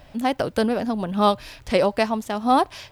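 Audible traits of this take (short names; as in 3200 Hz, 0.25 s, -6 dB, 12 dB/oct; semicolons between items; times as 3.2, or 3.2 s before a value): noise floor -49 dBFS; spectral tilt -4.0 dB/oct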